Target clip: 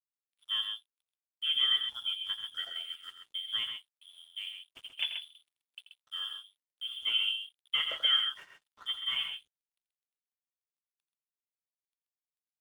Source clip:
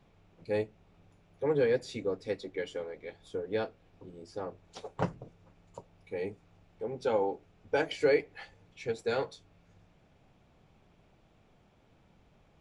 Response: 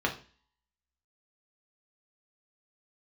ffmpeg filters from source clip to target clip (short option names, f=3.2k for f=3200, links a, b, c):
-af "bandreject=f=50:t=h:w=6,bandreject=f=100:t=h:w=6,bandreject=f=150:t=h:w=6,bandreject=f=200:t=h:w=6,bandreject=f=250:t=h:w=6,bandreject=f=300:t=h:w=6,bandreject=f=350:t=h:w=6,bandreject=f=400:t=h:w=6,lowpass=f=3.1k:t=q:w=0.5098,lowpass=f=3.1k:t=q:w=0.6013,lowpass=f=3.1k:t=q:w=0.9,lowpass=f=3.1k:t=q:w=2.563,afreqshift=-3600,aeval=exprs='sgn(val(0))*max(abs(val(0))-0.002,0)':c=same,aecho=1:1:84.55|131.2:0.282|0.447,volume=-2dB"